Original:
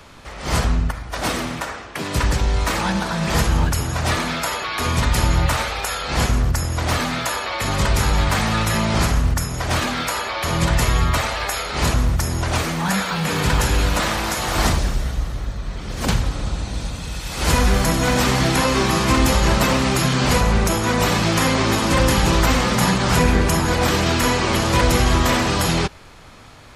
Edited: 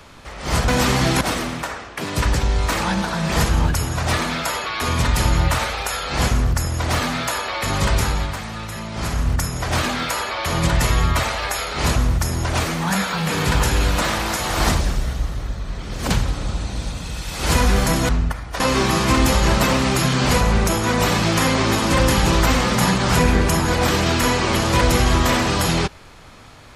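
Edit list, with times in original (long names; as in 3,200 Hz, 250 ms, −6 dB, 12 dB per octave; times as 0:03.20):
0:00.68–0:01.19: swap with 0:18.07–0:18.60
0:07.92–0:09.36: duck −10.5 dB, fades 0.45 s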